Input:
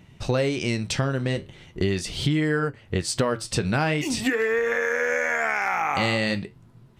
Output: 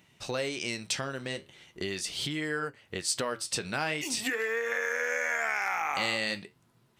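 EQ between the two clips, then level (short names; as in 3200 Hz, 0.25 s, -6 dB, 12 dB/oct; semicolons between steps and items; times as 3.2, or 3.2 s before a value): tilt +2 dB/oct; low shelf 130 Hz -9 dB; -6.5 dB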